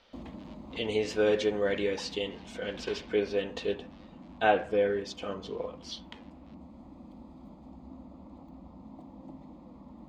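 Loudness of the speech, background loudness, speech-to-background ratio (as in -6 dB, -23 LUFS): -31.0 LUFS, -49.0 LUFS, 18.0 dB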